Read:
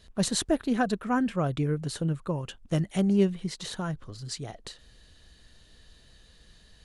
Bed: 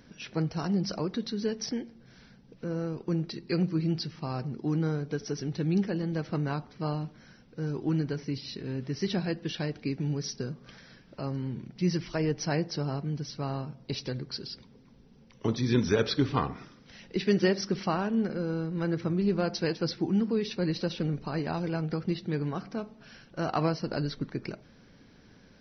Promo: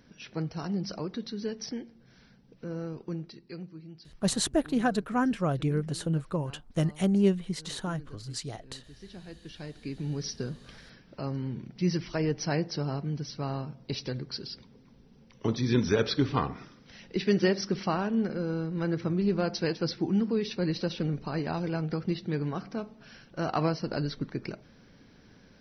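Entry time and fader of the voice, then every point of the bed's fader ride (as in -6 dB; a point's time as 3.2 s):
4.05 s, -0.5 dB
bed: 2.98 s -3.5 dB
3.85 s -18.5 dB
9.03 s -18.5 dB
10.26 s 0 dB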